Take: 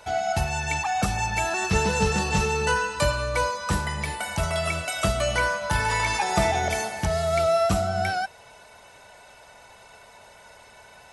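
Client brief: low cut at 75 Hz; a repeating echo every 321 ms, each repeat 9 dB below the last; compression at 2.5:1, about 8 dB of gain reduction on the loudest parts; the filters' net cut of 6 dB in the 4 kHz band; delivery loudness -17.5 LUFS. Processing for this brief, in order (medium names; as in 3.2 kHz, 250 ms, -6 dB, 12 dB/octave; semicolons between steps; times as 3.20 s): high-pass 75 Hz; peaking EQ 4 kHz -8 dB; compression 2.5:1, threshold -31 dBFS; feedback delay 321 ms, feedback 35%, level -9 dB; trim +14 dB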